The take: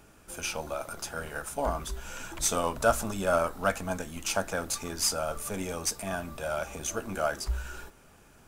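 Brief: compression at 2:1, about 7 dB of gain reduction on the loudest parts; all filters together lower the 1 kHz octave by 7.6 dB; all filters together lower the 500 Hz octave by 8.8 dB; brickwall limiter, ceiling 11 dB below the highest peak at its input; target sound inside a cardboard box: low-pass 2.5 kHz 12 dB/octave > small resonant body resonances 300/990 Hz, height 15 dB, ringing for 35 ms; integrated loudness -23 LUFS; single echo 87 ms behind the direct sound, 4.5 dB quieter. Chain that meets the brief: peaking EQ 500 Hz -8 dB; peaking EQ 1 kHz -8.5 dB; compression 2:1, threshold -36 dBFS; peak limiter -32 dBFS; low-pass 2.5 kHz 12 dB/octave; delay 87 ms -4.5 dB; small resonant body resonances 300/990 Hz, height 15 dB, ringing for 35 ms; trim +16 dB

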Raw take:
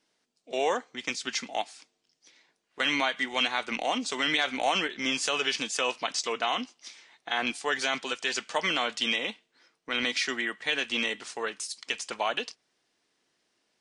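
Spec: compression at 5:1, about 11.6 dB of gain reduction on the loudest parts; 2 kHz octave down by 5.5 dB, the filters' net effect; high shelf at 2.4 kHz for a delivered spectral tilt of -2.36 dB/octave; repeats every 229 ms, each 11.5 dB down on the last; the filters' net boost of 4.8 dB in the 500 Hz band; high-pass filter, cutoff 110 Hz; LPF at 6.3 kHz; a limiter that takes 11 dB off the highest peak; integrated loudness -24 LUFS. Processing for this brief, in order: high-pass 110 Hz; low-pass 6.3 kHz; peaking EQ 500 Hz +6.5 dB; peaking EQ 2 kHz -4 dB; treble shelf 2.4 kHz -6 dB; compression 5:1, threshold -32 dBFS; peak limiter -28.5 dBFS; feedback delay 229 ms, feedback 27%, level -11.5 dB; trim +15.5 dB

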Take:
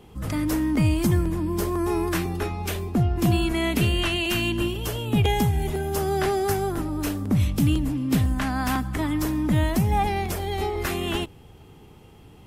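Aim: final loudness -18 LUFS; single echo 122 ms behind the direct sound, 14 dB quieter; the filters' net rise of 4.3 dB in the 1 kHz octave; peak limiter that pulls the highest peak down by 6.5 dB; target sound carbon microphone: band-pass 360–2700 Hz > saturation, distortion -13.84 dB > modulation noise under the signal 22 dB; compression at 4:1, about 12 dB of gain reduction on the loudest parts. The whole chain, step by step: peaking EQ 1 kHz +6 dB; compression 4:1, threshold -31 dBFS; peak limiter -24.5 dBFS; band-pass 360–2700 Hz; delay 122 ms -14 dB; saturation -34.5 dBFS; modulation noise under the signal 22 dB; trim +22.5 dB

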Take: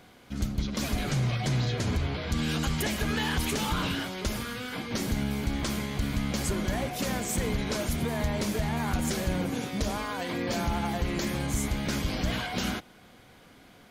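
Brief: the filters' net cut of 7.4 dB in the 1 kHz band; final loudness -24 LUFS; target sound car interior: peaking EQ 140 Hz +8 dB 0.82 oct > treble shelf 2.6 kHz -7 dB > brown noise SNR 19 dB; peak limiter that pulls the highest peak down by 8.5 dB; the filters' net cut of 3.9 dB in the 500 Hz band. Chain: peaking EQ 500 Hz -3 dB; peaking EQ 1 kHz -8 dB; peak limiter -27 dBFS; peaking EQ 140 Hz +8 dB 0.82 oct; treble shelf 2.6 kHz -7 dB; brown noise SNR 19 dB; trim +9.5 dB

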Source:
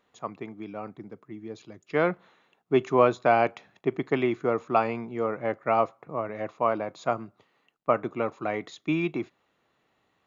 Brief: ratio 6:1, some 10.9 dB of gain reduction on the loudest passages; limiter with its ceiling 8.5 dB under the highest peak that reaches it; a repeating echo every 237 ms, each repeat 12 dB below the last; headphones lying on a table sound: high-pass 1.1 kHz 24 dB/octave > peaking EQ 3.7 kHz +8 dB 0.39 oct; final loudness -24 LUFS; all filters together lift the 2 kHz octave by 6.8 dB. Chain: peaking EQ 2 kHz +8.5 dB; compression 6:1, threshold -26 dBFS; peak limiter -21.5 dBFS; high-pass 1.1 kHz 24 dB/octave; peaking EQ 3.7 kHz +8 dB 0.39 oct; feedback delay 237 ms, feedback 25%, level -12 dB; trim +15.5 dB

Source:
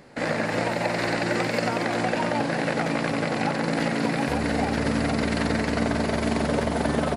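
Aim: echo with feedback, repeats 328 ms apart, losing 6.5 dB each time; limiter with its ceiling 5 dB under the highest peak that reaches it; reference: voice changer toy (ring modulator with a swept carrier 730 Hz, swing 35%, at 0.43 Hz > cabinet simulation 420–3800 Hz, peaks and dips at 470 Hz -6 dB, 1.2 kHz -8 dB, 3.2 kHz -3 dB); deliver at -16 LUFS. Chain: peak limiter -17 dBFS; feedback delay 328 ms, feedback 47%, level -6.5 dB; ring modulator with a swept carrier 730 Hz, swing 35%, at 0.43 Hz; cabinet simulation 420–3800 Hz, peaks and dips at 470 Hz -6 dB, 1.2 kHz -8 dB, 3.2 kHz -3 dB; trim +16 dB

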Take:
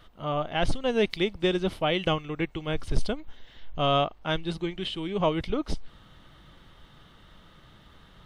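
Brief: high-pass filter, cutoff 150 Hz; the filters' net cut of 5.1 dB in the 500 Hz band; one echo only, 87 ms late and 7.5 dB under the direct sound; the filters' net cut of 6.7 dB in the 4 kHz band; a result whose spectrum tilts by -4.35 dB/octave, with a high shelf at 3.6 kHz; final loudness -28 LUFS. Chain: high-pass 150 Hz; peaking EQ 500 Hz -6.5 dB; treble shelf 3.6 kHz -7 dB; peaking EQ 4 kHz -5 dB; delay 87 ms -7.5 dB; trim +4 dB

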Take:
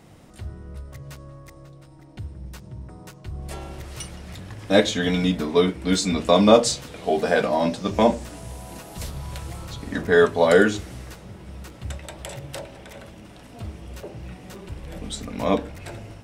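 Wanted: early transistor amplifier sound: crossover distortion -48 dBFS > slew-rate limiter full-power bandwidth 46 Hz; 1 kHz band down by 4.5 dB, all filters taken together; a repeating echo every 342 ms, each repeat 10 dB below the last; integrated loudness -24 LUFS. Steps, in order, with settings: peaking EQ 1 kHz -6.5 dB; feedback delay 342 ms, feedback 32%, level -10 dB; crossover distortion -48 dBFS; slew-rate limiter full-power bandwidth 46 Hz; trim +3.5 dB

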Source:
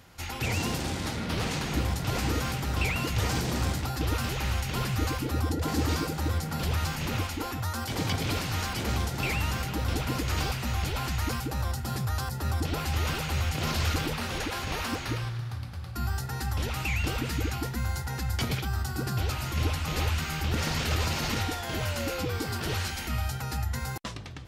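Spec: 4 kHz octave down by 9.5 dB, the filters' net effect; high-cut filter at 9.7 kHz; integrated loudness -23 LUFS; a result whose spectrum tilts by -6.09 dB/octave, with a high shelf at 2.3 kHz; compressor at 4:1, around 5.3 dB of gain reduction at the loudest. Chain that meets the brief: low-pass 9.7 kHz; treble shelf 2.3 kHz -4.5 dB; peaking EQ 4 kHz -8.5 dB; compression 4:1, threshold -30 dBFS; trim +12 dB

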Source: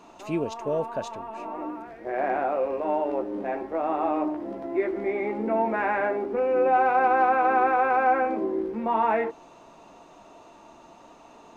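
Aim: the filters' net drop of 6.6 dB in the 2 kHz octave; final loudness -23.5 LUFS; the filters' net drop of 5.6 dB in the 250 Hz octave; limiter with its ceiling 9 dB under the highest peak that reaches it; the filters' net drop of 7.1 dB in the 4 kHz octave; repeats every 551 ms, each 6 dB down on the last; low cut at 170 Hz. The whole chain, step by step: high-pass 170 Hz; peaking EQ 250 Hz -7 dB; peaking EQ 2 kHz -8.5 dB; peaking EQ 4 kHz -6 dB; peak limiter -22 dBFS; feedback delay 551 ms, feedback 50%, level -6 dB; trim +7 dB

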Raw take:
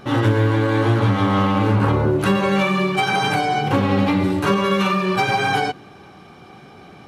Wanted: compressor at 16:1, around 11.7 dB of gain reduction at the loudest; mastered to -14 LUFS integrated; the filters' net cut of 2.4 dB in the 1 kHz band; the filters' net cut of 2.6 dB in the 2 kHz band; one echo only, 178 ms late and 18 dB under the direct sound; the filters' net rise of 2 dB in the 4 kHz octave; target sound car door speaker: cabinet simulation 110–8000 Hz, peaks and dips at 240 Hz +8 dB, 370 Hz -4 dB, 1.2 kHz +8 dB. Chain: peaking EQ 1 kHz -7 dB; peaking EQ 2 kHz -3.5 dB; peaking EQ 4 kHz +4.5 dB; compression 16:1, threshold -25 dBFS; cabinet simulation 110–8000 Hz, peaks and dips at 240 Hz +8 dB, 370 Hz -4 dB, 1.2 kHz +8 dB; delay 178 ms -18 dB; trim +14.5 dB

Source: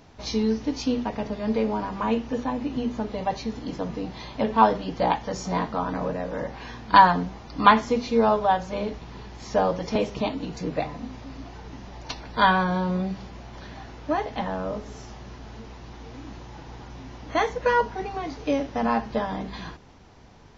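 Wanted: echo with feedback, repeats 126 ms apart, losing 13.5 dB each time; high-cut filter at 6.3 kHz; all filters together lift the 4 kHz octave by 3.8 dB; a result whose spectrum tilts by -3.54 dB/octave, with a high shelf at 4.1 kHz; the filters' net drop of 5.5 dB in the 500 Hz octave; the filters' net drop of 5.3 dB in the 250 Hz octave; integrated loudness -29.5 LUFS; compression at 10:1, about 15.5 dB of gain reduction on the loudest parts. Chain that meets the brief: low-pass 6.3 kHz; peaking EQ 250 Hz -5.5 dB; peaking EQ 500 Hz -5.5 dB; peaking EQ 4 kHz +7 dB; treble shelf 4.1 kHz -3 dB; compression 10:1, threshold -26 dBFS; feedback delay 126 ms, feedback 21%, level -13.5 dB; trim +4.5 dB

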